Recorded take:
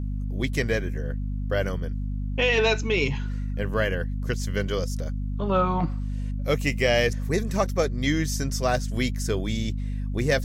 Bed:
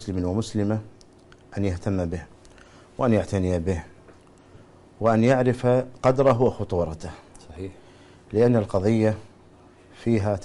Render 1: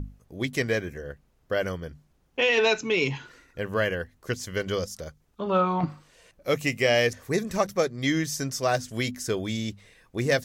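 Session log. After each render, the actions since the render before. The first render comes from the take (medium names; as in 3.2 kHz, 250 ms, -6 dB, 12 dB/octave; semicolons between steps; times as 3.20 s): hum notches 50/100/150/200/250 Hz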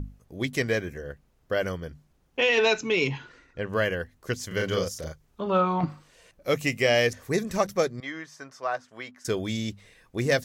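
3.07–3.73 s: distance through air 84 m; 4.47–5.41 s: doubling 38 ms -2 dB; 8.00–9.25 s: band-pass filter 1.1 kHz, Q 1.5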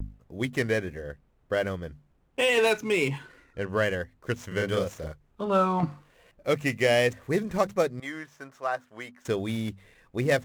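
median filter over 9 samples; vibrato 1.3 Hz 50 cents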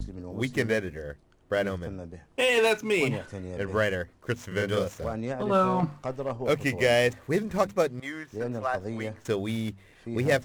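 add bed -14 dB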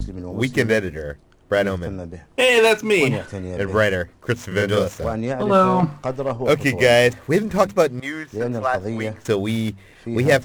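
trim +8 dB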